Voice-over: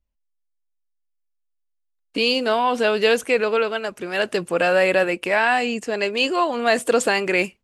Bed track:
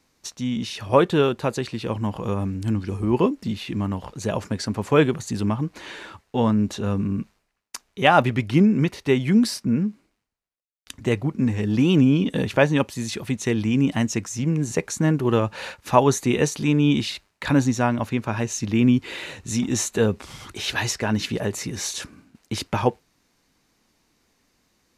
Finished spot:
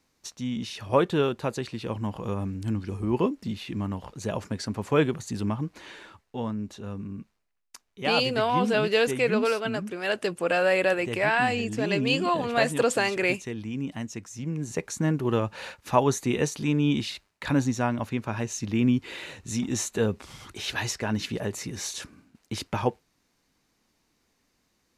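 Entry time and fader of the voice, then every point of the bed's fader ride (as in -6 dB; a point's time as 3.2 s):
5.90 s, -5.0 dB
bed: 5.64 s -5 dB
6.57 s -12 dB
14.16 s -12 dB
14.95 s -5 dB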